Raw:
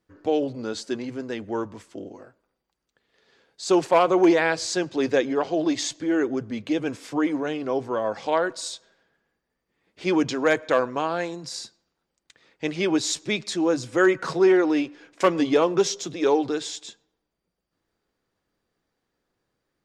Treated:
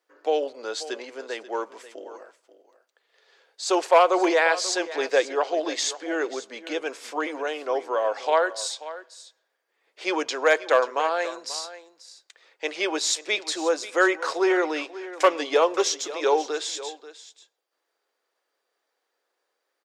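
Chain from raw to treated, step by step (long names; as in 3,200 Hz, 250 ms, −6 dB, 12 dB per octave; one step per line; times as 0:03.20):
high-pass filter 450 Hz 24 dB per octave
on a send: single-tap delay 536 ms −15.5 dB
on the sum: level +2.5 dB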